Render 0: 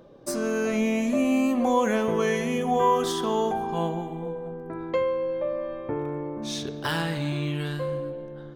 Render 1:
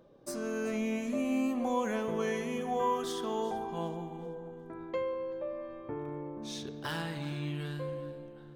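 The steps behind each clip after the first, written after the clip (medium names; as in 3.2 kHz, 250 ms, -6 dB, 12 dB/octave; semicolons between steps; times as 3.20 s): echo whose repeats swap between lows and highs 191 ms, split 980 Hz, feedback 58%, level -12 dB; trim -9 dB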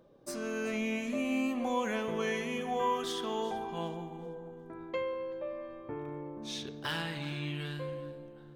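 dynamic bell 2.7 kHz, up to +7 dB, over -54 dBFS, Q 0.88; trim -1.5 dB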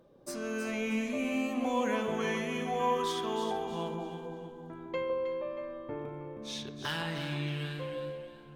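echo whose repeats swap between lows and highs 158 ms, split 1.3 kHz, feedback 60%, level -4 dB; Opus 256 kbps 48 kHz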